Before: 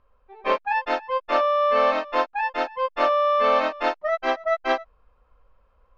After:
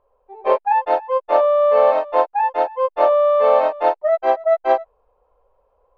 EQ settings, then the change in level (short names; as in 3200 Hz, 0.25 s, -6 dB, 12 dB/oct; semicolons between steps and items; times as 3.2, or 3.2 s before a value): notch 5300 Hz, Q 13; dynamic EQ 1600 Hz, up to +4 dB, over -35 dBFS, Q 1.2; band shelf 590 Hz +15.5 dB; -8.0 dB